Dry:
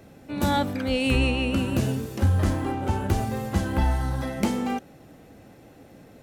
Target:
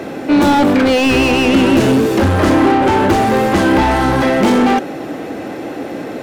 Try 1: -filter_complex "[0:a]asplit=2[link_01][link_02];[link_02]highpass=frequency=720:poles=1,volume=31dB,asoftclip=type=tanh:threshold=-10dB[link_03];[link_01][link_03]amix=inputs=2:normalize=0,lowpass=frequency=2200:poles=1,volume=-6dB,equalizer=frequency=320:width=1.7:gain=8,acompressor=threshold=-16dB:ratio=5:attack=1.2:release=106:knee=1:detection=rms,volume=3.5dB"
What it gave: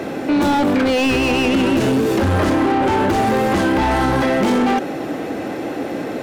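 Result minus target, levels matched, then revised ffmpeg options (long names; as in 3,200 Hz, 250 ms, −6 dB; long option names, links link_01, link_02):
downward compressor: peak gain reduction +7 dB
-filter_complex "[0:a]asplit=2[link_01][link_02];[link_02]highpass=frequency=720:poles=1,volume=31dB,asoftclip=type=tanh:threshold=-10dB[link_03];[link_01][link_03]amix=inputs=2:normalize=0,lowpass=frequency=2200:poles=1,volume=-6dB,equalizer=frequency=320:width=1.7:gain=8,volume=3.5dB"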